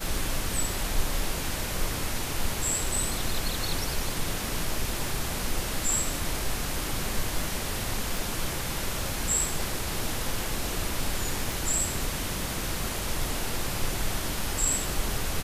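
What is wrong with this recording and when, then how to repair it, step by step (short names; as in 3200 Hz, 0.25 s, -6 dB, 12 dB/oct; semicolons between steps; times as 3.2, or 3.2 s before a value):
8.17 pop
11.52 pop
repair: de-click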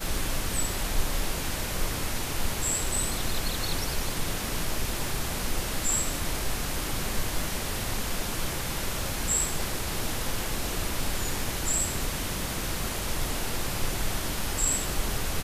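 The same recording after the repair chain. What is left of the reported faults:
none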